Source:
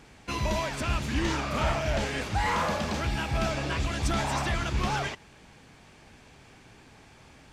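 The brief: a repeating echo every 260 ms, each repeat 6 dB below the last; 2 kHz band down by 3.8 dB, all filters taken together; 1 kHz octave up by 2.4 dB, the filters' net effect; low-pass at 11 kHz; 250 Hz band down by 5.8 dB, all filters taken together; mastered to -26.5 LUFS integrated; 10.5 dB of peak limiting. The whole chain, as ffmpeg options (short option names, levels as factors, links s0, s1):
-af "lowpass=11000,equalizer=f=250:t=o:g=-8.5,equalizer=f=1000:t=o:g=5,equalizer=f=2000:t=o:g=-6.5,alimiter=level_in=1.26:limit=0.0631:level=0:latency=1,volume=0.794,aecho=1:1:260|520|780|1040|1300|1560:0.501|0.251|0.125|0.0626|0.0313|0.0157,volume=2.37"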